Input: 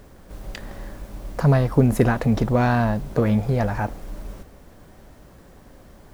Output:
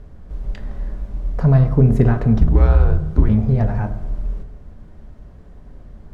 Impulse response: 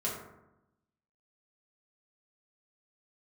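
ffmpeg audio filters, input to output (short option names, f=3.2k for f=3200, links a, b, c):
-filter_complex "[0:a]asettb=1/sr,asplit=3[a][b][c];[a]atrim=end=2.384[d];[b]atrim=start=2.38:end=3.29,asetpts=PTS-STARTPTS,afade=t=in:d=0.004:c=qsin,afade=t=out:st=0.906:d=0.004:c=qsin,afreqshift=-190[e];[c]atrim=start=3.286[f];[d][e]acrossfade=d=0.004:c1=hsin:c2=qsin[g];[g][f]acrossfade=d=0.004:c1=qsin:c2=hsin,aemphasis=mode=reproduction:type=bsi,asplit=2[h][i];[1:a]atrim=start_sample=2205[j];[i][j]afir=irnorm=-1:irlink=0,volume=-9.5dB[k];[h][k]amix=inputs=2:normalize=0,volume=-6.5dB"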